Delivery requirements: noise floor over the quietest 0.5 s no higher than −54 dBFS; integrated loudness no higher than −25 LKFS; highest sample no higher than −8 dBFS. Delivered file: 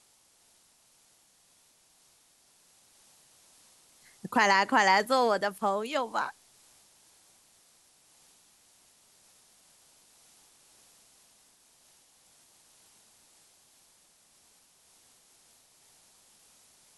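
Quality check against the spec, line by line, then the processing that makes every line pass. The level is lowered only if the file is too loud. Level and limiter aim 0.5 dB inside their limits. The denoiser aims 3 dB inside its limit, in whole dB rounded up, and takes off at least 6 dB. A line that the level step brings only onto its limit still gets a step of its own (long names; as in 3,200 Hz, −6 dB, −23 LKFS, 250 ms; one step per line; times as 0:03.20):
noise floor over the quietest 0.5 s −64 dBFS: in spec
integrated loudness −26.0 LKFS: in spec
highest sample −9.5 dBFS: in spec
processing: no processing needed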